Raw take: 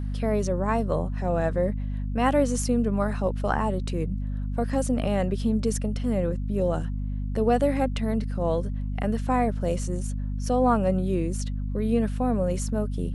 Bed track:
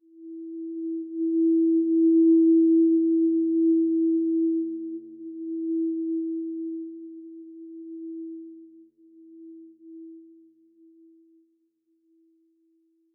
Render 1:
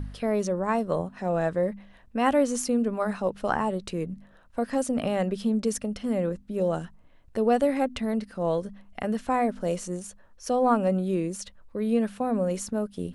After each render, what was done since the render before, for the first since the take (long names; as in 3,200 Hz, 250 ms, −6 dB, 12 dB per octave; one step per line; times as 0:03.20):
hum removal 50 Hz, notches 5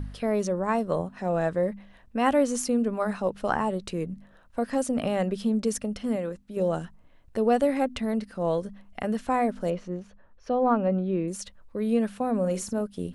0:06.16–0:06.57: low-shelf EQ 460 Hz −7.5 dB
0:09.70–0:11.28: high-frequency loss of the air 280 metres
0:12.39–0:12.81: double-tracking delay 49 ms −12 dB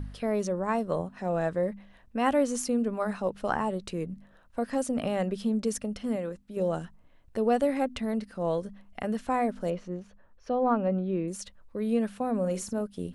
level −2.5 dB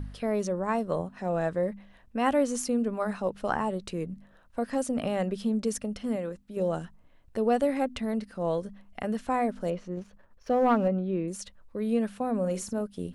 0:09.97–0:10.88: leveller curve on the samples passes 1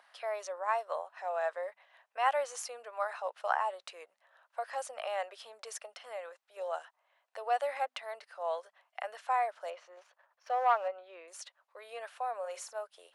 Butterworth high-pass 640 Hz 36 dB per octave
high-shelf EQ 5,600 Hz −10 dB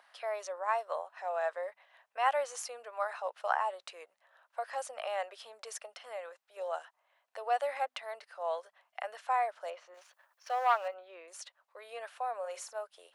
0:09.94–0:10.94: spectral tilt +3 dB per octave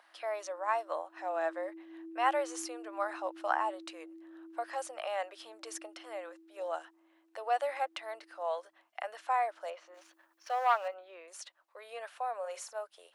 mix in bed track −28 dB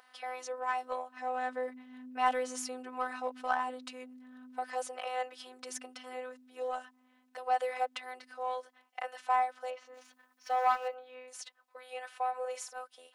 in parallel at −6 dB: soft clipping −30.5 dBFS, distortion −9 dB
on the sum: phases set to zero 254 Hz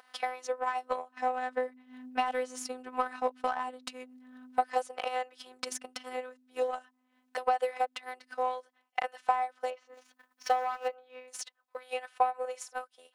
brickwall limiter −23 dBFS, peak gain reduction 10 dB
transient designer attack +11 dB, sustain −7 dB